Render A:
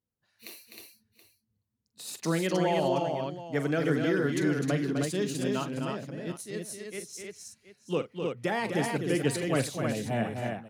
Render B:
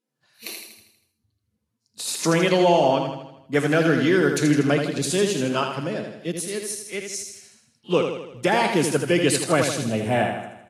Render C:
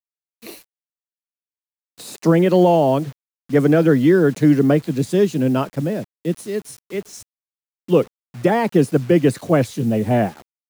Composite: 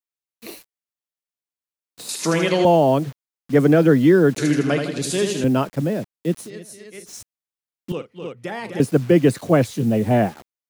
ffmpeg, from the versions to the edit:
-filter_complex "[1:a]asplit=2[s0][s1];[0:a]asplit=2[s2][s3];[2:a]asplit=5[s4][s5][s6][s7][s8];[s4]atrim=end=2.092[s9];[s0]atrim=start=2.088:end=2.652[s10];[s5]atrim=start=2.648:end=4.382[s11];[s1]atrim=start=4.378:end=5.442[s12];[s6]atrim=start=5.438:end=6.5[s13];[s2]atrim=start=6.46:end=7.09[s14];[s7]atrim=start=7.05:end=7.922[s15];[s3]atrim=start=7.918:end=8.802[s16];[s8]atrim=start=8.798[s17];[s9][s10]acrossfade=d=0.004:c1=hsin:c2=hsin[s18];[s18][s11]acrossfade=d=0.004:c1=hsin:c2=hsin[s19];[s19][s12]acrossfade=d=0.004:c1=hsin:c2=hsin[s20];[s20][s13]acrossfade=d=0.004:c1=hsin:c2=hsin[s21];[s21][s14]acrossfade=d=0.04:c1=tri:c2=tri[s22];[s22][s15]acrossfade=d=0.04:c1=tri:c2=tri[s23];[s23][s16]acrossfade=d=0.004:c1=hsin:c2=hsin[s24];[s24][s17]acrossfade=d=0.004:c1=hsin:c2=hsin"

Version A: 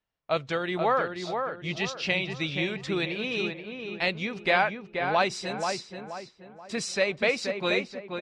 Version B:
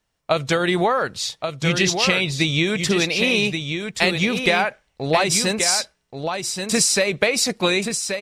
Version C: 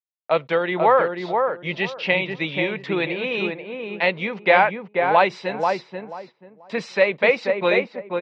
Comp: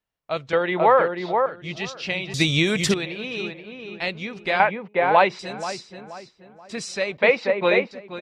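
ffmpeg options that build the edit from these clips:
-filter_complex "[2:a]asplit=3[s0][s1][s2];[0:a]asplit=5[s3][s4][s5][s6][s7];[s3]atrim=end=0.532[s8];[s0]atrim=start=0.528:end=1.462[s9];[s4]atrim=start=1.458:end=2.342[s10];[1:a]atrim=start=2.338:end=2.942[s11];[s5]atrim=start=2.938:end=4.602[s12];[s1]atrim=start=4.598:end=5.392[s13];[s6]atrim=start=5.388:end=7.172[s14];[s2]atrim=start=7.168:end=7.912[s15];[s7]atrim=start=7.908[s16];[s8][s9]acrossfade=d=0.004:c1=hsin:c2=hsin[s17];[s17][s10]acrossfade=d=0.004:c1=hsin:c2=hsin[s18];[s18][s11]acrossfade=d=0.004:c1=hsin:c2=hsin[s19];[s19][s12]acrossfade=d=0.004:c1=hsin:c2=hsin[s20];[s20][s13]acrossfade=d=0.004:c1=hsin:c2=hsin[s21];[s21][s14]acrossfade=d=0.004:c1=hsin:c2=hsin[s22];[s22][s15]acrossfade=d=0.004:c1=hsin:c2=hsin[s23];[s23][s16]acrossfade=d=0.004:c1=hsin:c2=hsin"

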